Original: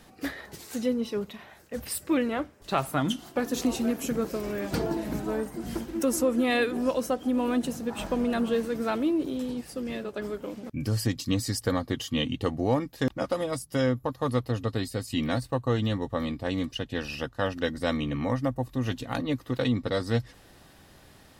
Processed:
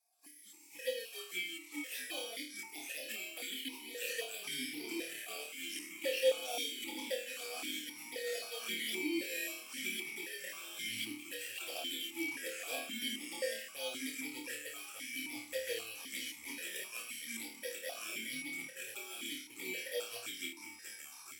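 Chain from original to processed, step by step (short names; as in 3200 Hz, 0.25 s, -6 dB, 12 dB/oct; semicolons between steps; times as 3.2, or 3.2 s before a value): FFT order left unsorted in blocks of 32 samples; differentiator; AGC gain up to 14 dB; envelope flanger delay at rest 4.5 ms, full sweep at -12 dBFS; fixed phaser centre 500 Hz, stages 4; envelope phaser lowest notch 510 Hz, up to 1600 Hz, full sweep at -17 dBFS; echoes that change speed 0.122 s, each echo -6 st, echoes 2, each echo -6 dB; flutter echo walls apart 4.6 m, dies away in 0.44 s; vowel sequencer 3.8 Hz; gain +12 dB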